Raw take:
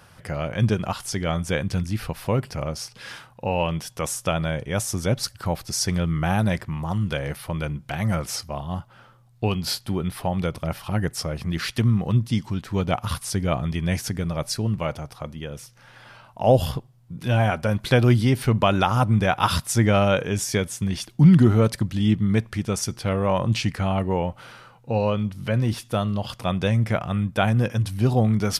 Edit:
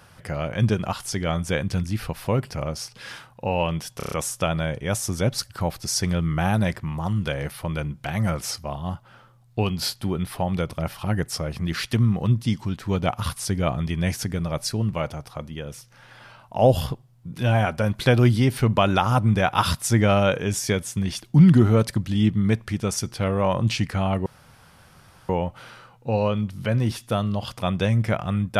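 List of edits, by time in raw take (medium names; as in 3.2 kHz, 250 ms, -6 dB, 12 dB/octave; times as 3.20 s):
3.97 s: stutter 0.03 s, 6 plays
24.11 s: insert room tone 1.03 s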